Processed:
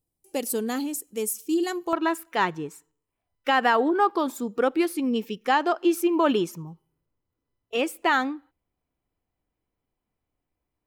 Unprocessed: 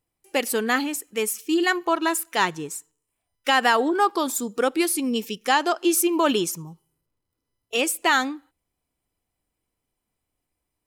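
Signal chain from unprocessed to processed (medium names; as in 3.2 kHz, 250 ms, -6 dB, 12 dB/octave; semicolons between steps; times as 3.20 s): peaking EQ 1.8 kHz -15 dB 2.3 oct, from 1.93 s 8.9 kHz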